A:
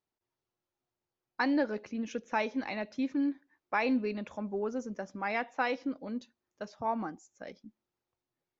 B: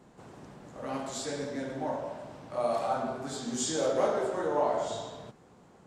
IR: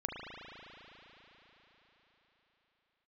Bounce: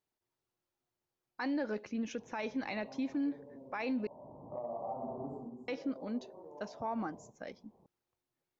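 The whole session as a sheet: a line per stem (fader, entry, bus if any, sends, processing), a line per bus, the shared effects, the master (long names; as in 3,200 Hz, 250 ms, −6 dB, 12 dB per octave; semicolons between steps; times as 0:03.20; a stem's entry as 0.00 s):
−0.5 dB, 0.00 s, muted 0:04.07–0:05.68, no send, no processing
+2.0 dB, 2.00 s, no send, elliptic low-pass filter 1,000 Hz, stop band 40 dB; downward compressor 12 to 1, threshold −38 dBFS, peak gain reduction 16.5 dB; automatic ducking −12 dB, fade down 0.45 s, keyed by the first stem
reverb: not used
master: brickwall limiter −28 dBFS, peak gain reduction 11 dB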